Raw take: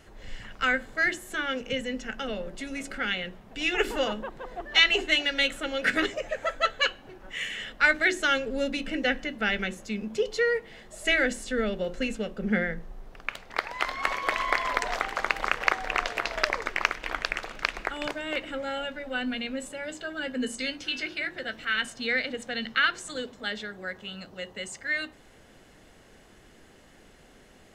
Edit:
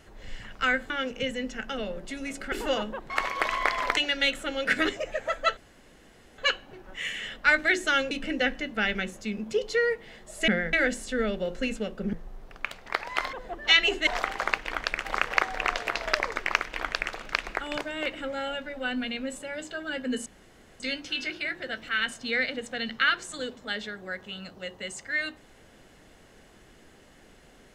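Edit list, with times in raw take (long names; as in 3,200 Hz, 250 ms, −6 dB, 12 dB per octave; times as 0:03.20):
0:00.90–0:01.40: remove
0:03.02–0:03.82: remove
0:04.40–0:05.14: swap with 0:13.97–0:14.84
0:06.74: splice in room tone 0.81 s
0:08.47–0:08.75: remove
0:12.52–0:12.77: move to 0:11.12
0:16.96–0:17.43: duplicate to 0:15.35
0:20.56: splice in room tone 0.54 s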